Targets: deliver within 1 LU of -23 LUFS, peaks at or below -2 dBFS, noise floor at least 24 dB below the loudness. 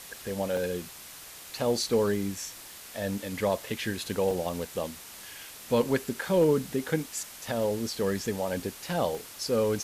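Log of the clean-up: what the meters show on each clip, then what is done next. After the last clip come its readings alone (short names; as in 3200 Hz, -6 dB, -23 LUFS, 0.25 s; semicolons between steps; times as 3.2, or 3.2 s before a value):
dropouts 5; longest dropout 1.4 ms; noise floor -46 dBFS; noise floor target -54 dBFS; loudness -30.0 LUFS; peak -13.0 dBFS; loudness target -23.0 LUFS
-> interpolate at 0.57/4.31/7.48/8.6/9.15, 1.4 ms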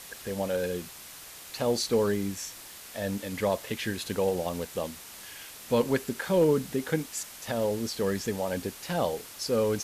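dropouts 0; noise floor -46 dBFS; noise floor target -54 dBFS
-> denoiser 8 dB, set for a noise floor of -46 dBFS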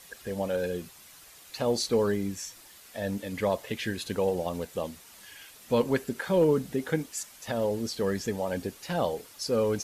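noise floor -52 dBFS; noise floor target -54 dBFS
-> denoiser 6 dB, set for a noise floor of -52 dBFS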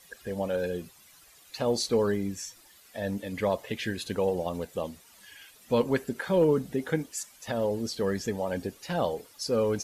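noise floor -57 dBFS; loudness -30.0 LUFS; peak -13.0 dBFS; loudness target -23.0 LUFS
-> gain +7 dB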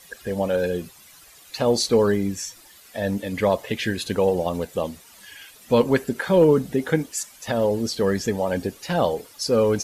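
loudness -23.0 LUFS; peak -6.0 dBFS; noise floor -50 dBFS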